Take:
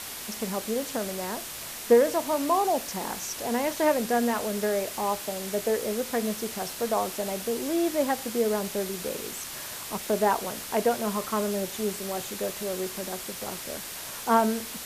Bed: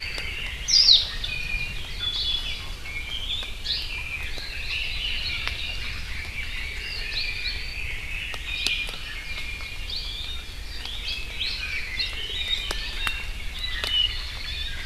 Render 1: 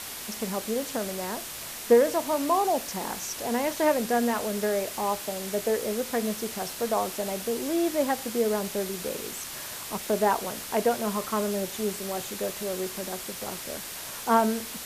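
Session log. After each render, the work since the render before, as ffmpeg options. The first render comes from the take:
-af anull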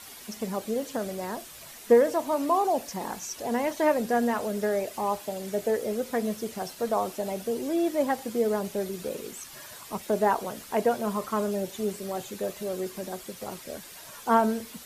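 -af "afftdn=nr=10:nf=-38"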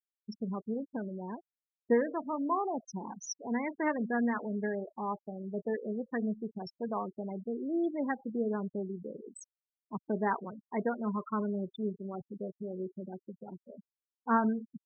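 -af "afftfilt=real='re*gte(hypot(re,im),0.0501)':imag='im*gte(hypot(re,im),0.0501)':win_size=1024:overlap=0.75,equalizer=f=610:t=o:w=1.3:g=-12.5"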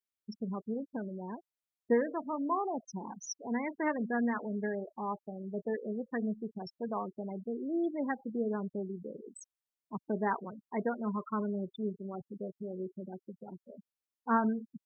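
-af "volume=-1dB"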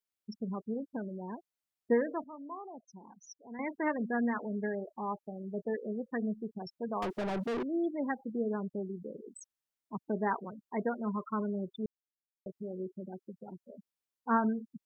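-filter_complex "[0:a]asettb=1/sr,asplit=3[a][b][c];[a]atrim=end=7.024[d];[b]atrim=start=7.02:end=7.63,asetpts=PTS-STARTPTS,afade=t=in:d=0.004:c=qsin,afade=t=out:st=0.606:d=0.004:c=qsin,asplit=2[e][f];[f]highpass=f=720:p=1,volume=33dB,asoftclip=type=tanh:threshold=-27.5dB[g];[e][g]amix=inputs=2:normalize=0,lowpass=f=3.9k:p=1,volume=-6dB[h];[c]atrim=start=7.626[i];[d][h]acrossfade=d=0.004:c1=hsin:c2=qsin[j];[j][i]acrossfade=d=0.004:c1=qsin:c2=hsin,asplit=5[k][l][m][n][o];[k]atrim=end=2.242[p];[l]atrim=start=2.238:end=3.592,asetpts=PTS-STARTPTS,volume=-11.5dB[q];[m]atrim=start=3.588:end=11.86,asetpts=PTS-STARTPTS,afade=t=out:st=8.268:d=0.004:c=hsin[r];[n]atrim=start=11.86:end=12.46,asetpts=PTS-STARTPTS,volume=0[s];[o]atrim=start=12.46,asetpts=PTS-STARTPTS,afade=t=in:d=0.004:c=hsin[t];[p][q]acrossfade=d=0.004:c1=hsin:c2=hsin[u];[r][s][t]concat=n=3:v=0:a=1[v];[u][v]acrossfade=d=0.004:c1=hsin:c2=hsin"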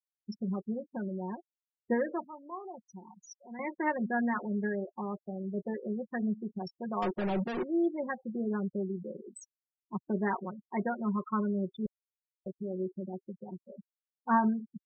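-af "aecho=1:1:5.5:0.71,afftfilt=real='re*gte(hypot(re,im),0.00631)':imag='im*gte(hypot(re,im),0.00631)':win_size=1024:overlap=0.75"

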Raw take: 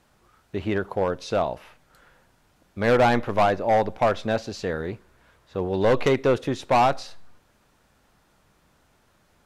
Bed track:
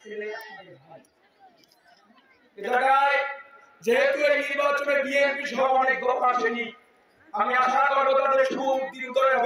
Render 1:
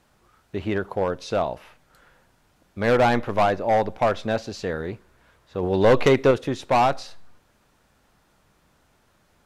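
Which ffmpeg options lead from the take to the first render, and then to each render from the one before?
-filter_complex "[0:a]asplit=3[a][b][c];[a]atrim=end=5.632[d];[b]atrim=start=5.628:end=6.312,asetpts=PTS-STARTPTS,volume=3.5dB[e];[c]atrim=start=6.308[f];[d][e]acrossfade=d=0.004:c1=hsin:c2=hsin[g];[g][f]acrossfade=d=0.004:c1=hsin:c2=hsin"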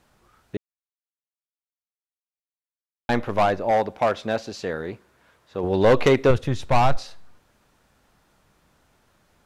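-filter_complex "[0:a]asettb=1/sr,asplit=3[a][b][c];[a]atrim=end=3.714[d];[b]atrim=start=3.71:end=5.64,asetpts=PTS-STARTPTS,afade=t=in:d=0.004:c=qsin,afade=t=out:st=1.926:d=0.004:c=qsin,highpass=f=150:p=1[e];[c]atrim=start=5.636[f];[d][e]acrossfade=d=0.004:c1=hsin:c2=qsin[g];[g][f]acrossfade=d=0.004:c1=qsin:c2=hsin,asplit=3[h][i][j];[h]afade=t=out:st=6.29:d=0.02[k];[i]asubboost=boost=6:cutoff=120,afade=t=in:st=6.29:d=0.02,afade=t=out:st=6.96:d=0.02[l];[j]afade=t=in:st=6.96:d=0.02[m];[k][l][m]amix=inputs=3:normalize=0,asplit=3[n][o][p];[n]atrim=end=0.57,asetpts=PTS-STARTPTS,afade=t=out:st=0.566:d=0.004:c=hsin[q];[o]atrim=start=0.57:end=3.09,asetpts=PTS-STARTPTS,volume=0[r];[p]atrim=start=3.09,asetpts=PTS-STARTPTS,afade=t=in:d=0.004:c=hsin[s];[q][r][s]concat=n=3:v=0:a=1"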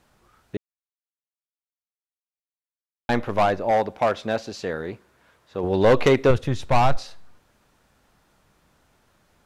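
-af anull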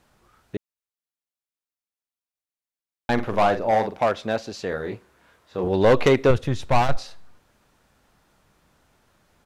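-filter_complex "[0:a]asplit=3[a][b][c];[a]afade=t=out:st=3.17:d=0.02[d];[b]asplit=2[e][f];[f]adelay=45,volume=-8dB[g];[e][g]amix=inputs=2:normalize=0,afade=t=in:st=3.17:d=0.02,afade=t=out:st=4.01:d=0.02[h];[c]afade=t=in:st=4.01:d=0.02[i];[d][h][i]amix=inputs=3:normalize=0,asettb=1/sr,asplit=3[j][k][l];[j]atrim=end=4.694[m];[k]atrim=start=4.69:end=5.68,asetpts=PTS-STARTPTS,afade=t=in:d=0.004:c=qsin,afade=t=out:st=0.986:d=0.004:c=qsin,asplit=2[n][o];[o]adelay=27,volume=-5dB[p];[n][p]amix=inputs=2:normalize=0,atrim=end_sample=43659[q];[l]atrim=start=5.676[r];[m][q]acrossfade=d=0.004:c1=hsin:c2=qsin[s];[s][r]acrossfade=d=0.004:c1=qsin:c2=hsin,asettb=1/sr,asplit=3[t][u][v];[t]atrim=end=6.334[w];[u]atrim=start=6.33:end=6.89,asetpts=PTS-STARTPTS,afade=t=in:d=0.004:c=qsin,afade=t=out:st=0.556:d=0.004:c=qsin,aeval=exprs='clip(val(0),-1,0.112)':c=same[x];[v]atrim=start=6.886[y];[w][x]acrossfade=d=0.004:c1=hsin:c2=qsin[z];[z][y]acrossfade=d=0.004:c1=qsin:c2=hsin"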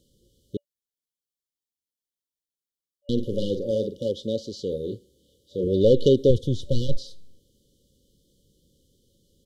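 -filter_complex "[0:a]acrossover=split=5700[a][b];[b]acompressor=threshold=-52dB:ratio=4:attack=1:release=60[c];[a][c]amix=inputs=2:normalize=0,afftfilt=real='re*(1-between(b*sr/4096,580,2900))':imag='im*(1-between(b*sr/4096,580,2900))':win_size=4096:overlap=0.75"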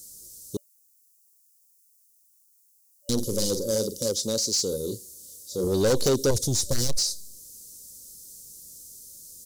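-af "aexciter=amount=16:drive=8:freq=5k,asoftclip=type=tanh:threshold=-17dB"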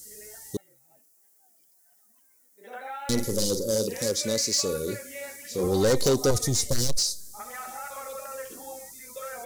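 -filter_complex "[1:a]volume=-17.5dB[a];[0:a][a]amix=inputs=2:normalize=0"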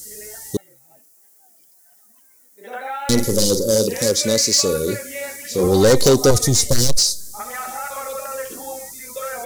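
-af "volume=9dB"

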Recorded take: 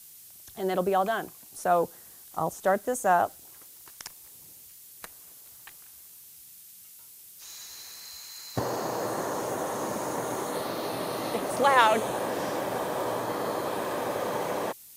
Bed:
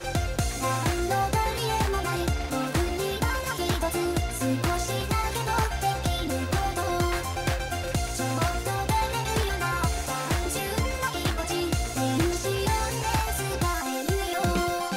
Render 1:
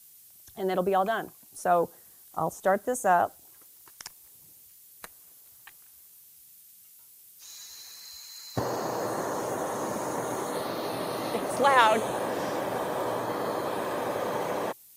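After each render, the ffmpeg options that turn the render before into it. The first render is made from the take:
-af "afftdn=nr=6:nf=-50"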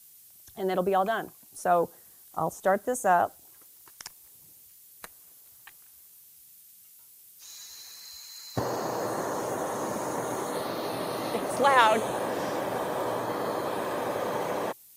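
-af anull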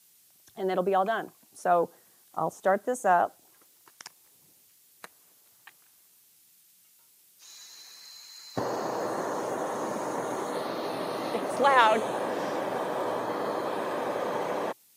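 -af "highpass=160,highshelf=f=8.3k:g=-10.5"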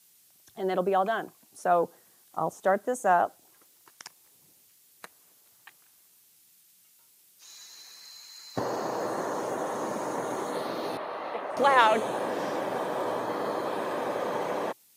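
-filter_complex "[0:a]asettb=1/sr,asplit=3[a][b][c];[a]atrim=end=10.974[d];[b]atrim=start=10.97:end=11.57,asetpts=PTS-STARTPTS,afade=t=in:d=0.004:c=qsin,afade=t=out:st=0.596:d=0.004:c=qsin,acrossover=split=510 3100:gain=0.2 1 0.1[e][f][g];[e][f][g]amix=inputs=3:normalize=0[h];[c]atrim=start=11.566[i];[d][h]acrossfade=d=0.004:c1=hsin:c2=qsin[j];[j][i]acrossfade=d=0.004:c1=qsin:c2=hsin"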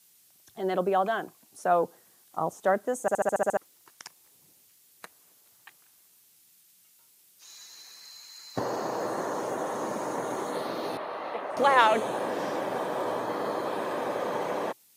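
-filter_complex "[0:a]asplit=9[a][b][c][d][e][f][g][h][i];[a]atrim=end=3.082[j];[b]atrim=start=3.008:end=3.082[k];[c]atrim=start=3.008:end=3.082[l];[d]atrim=start=3.008:end=3.082[m];[e]atrim=start=3.008:end=3.082[n];[f]atrim=start=3.008:end=3.082[o];[g]atrim=start=3.008:end=3.082[p];[h]atrim=start=3.008:end=3.082[q];[i]atrim=start=3.568[r];[j][k]acrossfade=d=0.004:c1=hsin:c2=hsin[s];[s][l]acrossfade=d=0.004:c1=hsin:c2=hsin[t];[t][m]acrossfade=d=0.004:c1=hsin:c2=hsin[u];[u][n]acrossfade=d=0.004:c1=hsin:c2=hsin[v];[v][o]acrossfade=d=0.004:c1=hsin:c2=hsin[w];[w][p]acrossfade=d=0.004:c1=hsin:c2=hsin[x];[x][q]acrossfade=d=0.004:c1=hsin:c2=hsin[y];[y][r]acrossfade=d=0.004:c1=hsin:c2=hsin"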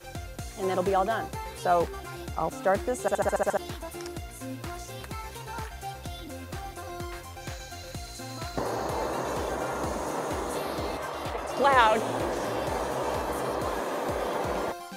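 -filter_complex "[1:a]volume=-11.5dB[a];[0:a][a]amix=inputs=2:normalize=0"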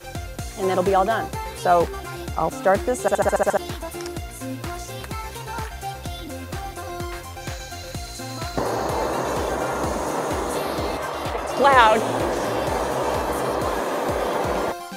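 -af "volume=6.5dB"

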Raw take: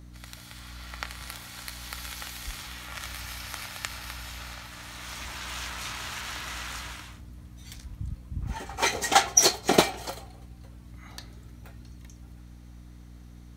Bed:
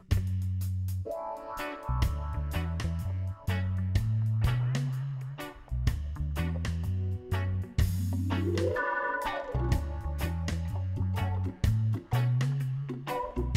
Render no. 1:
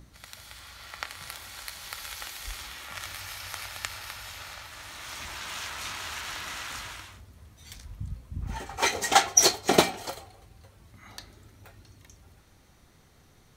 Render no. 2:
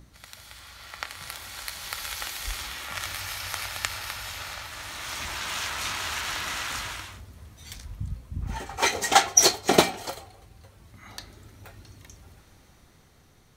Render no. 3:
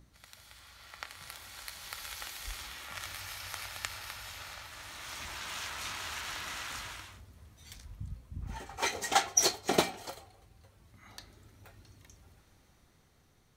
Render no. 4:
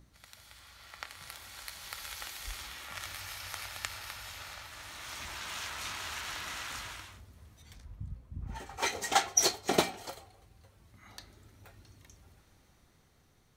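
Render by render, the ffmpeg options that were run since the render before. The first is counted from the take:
-af "bandreject=f=60:t=h:w=6,bandreject=f=120:t=h:w=6,bandreject=f=180:t=h:w=6,bandreject=f=240:t=h:w=6,bandreject=f=300:t=h:w=6"
-af "dynaudnorm=f=330:g=9:m=5.5dB"
-af "volume=-8.5dB"
-filter_complex "[0:a]asettb=1/sr,asplit=3[a][b][c];[a]atrim=end=7.624[d];[b]atrim=start=7.62:end=8.55,asetpts=PTS-STARTPTS,afade=t=in:d=0.004:c=qsin,afade=t=out:st=0.926:d=0.004:c=qsin,highshelf=f=2.1k:g=-9[e];[c]atrim=start=8.546[f];[d][e]acrossfade=d=0.004:c1=hsin:c2=qsin[g];[g][f]acrossfade=d=0.004:c1=qsin:c2=hsin"

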